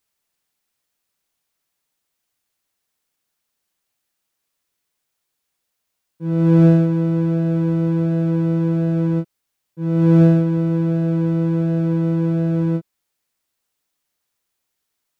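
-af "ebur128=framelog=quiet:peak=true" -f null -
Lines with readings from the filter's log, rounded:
Integrated loudness:
  I:         -17.9 LUFS
  Threshold: -28.1 LUFS
Loudness range:
  LRA:         5.8 LU
  Threshold: -39.3 LUFS
  LRA low:   -23.4 LUFS
  LRA high:  -17.6 LUFS
True peak:
  Peak:       -3.1 dBFS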